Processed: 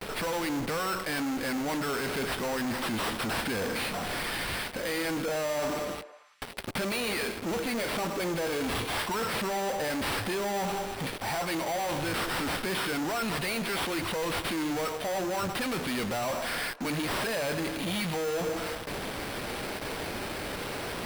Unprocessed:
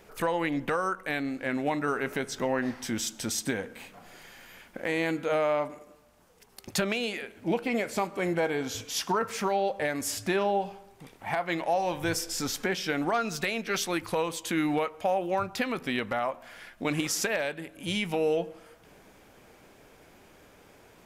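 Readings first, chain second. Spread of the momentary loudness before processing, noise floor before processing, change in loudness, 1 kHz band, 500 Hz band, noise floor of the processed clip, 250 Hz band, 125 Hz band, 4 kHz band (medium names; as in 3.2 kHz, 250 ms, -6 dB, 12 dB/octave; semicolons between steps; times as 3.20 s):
9 LU, -57 dBFS, -1.0 dB, -1.0 dB, -2.0 dB, -39 dBFS, -0.5 dB, +1.0 dB, +3.0 dB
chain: gate with hold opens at -46 dBFS; treble shelf 7.5 kHz +10 dB; reverse; compression 5:1, threshold -36 dBFS, peak gain reduction 13 dB; reverse; sample-rate reducer 6.7 kHz, jitter 0%; in parallel at -11 dB: fuzz box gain 62 dB, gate -58 dBFS; on the sum: repeats whose band climbs or falls 110 ms, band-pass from 460 Hz, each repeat 0.7 oct, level -12 dB; trim -7 dB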